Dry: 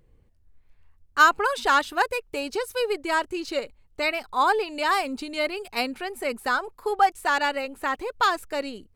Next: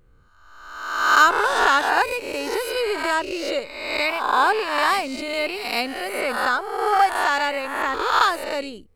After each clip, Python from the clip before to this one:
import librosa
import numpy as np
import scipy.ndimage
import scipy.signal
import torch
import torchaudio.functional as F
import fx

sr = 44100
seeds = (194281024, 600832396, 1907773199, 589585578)

y = fx.spec_swells(x, sr, rise_s=1.09)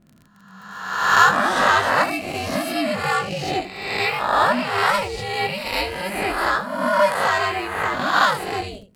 y = x * np.sin(2.0 * np.pi * 190.0 * np.arange(len(x)) / sr)
y = fx.room_early_taps(y, sr, ms=(20, 79), db=(-5.0, -12.0))
y = fx.dmg_crackle(y, sr, seeds[0], per_s=42.0, level_db=-39.0)
y = y * librosa.db_to_amplitude(2.5)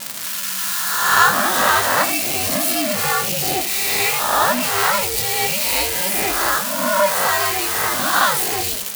y = x + 0.5 * 10.0 ** (-11.0 / 20.0) * np.diff(np.sign(x), prepend=np.sign(x[:1]))